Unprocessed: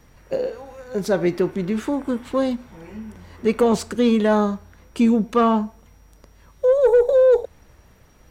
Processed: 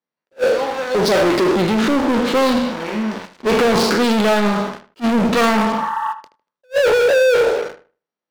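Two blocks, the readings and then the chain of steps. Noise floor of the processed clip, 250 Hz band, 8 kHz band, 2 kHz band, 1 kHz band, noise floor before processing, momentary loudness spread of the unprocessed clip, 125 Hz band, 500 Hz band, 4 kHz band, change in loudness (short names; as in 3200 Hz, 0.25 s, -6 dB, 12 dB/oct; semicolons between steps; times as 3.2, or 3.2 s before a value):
under -85 dBFS, +3.0 dB, +9.5 dB, +13.5 dB, +7.5 dB, -53 dBFS, 22 LU, +4.0 dB, +3.0 dB, +14.0 dB, +3.0 dB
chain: spectral trails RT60 0.64 s; Chebyshev band-pass 180–4700 Hz, order 3; bell 1700 Hz -3 dB 1.8 oct; sample leveller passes 5; low shelf 300 Hz -10.5 dB; gate -34 dBFS, range -11 dB; spectral repair 5.77–6.1, 820–2000 Hz before; sample leveller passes 2; on a send: darkening echo 77 ms, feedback 23%, low-pass 3100 Hz, level -12 dB; on the sum: attack slew limiter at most 500 dB/s; gain -6 dB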